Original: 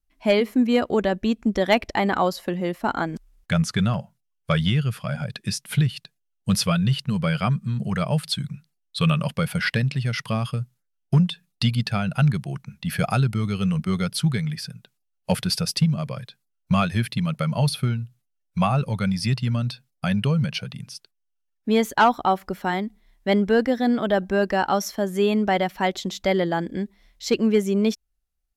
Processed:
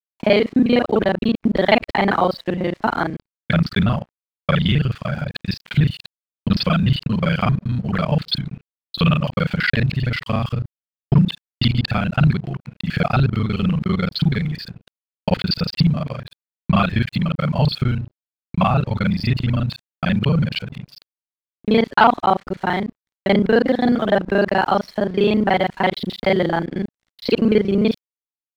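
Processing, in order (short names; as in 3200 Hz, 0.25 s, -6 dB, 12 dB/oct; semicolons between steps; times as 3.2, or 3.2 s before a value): local time reversal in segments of 33 ms; elliptic low-pass 4600 Hz, stop band 40 dB; crossover distortion -51 dBFS; gain +5.5 dB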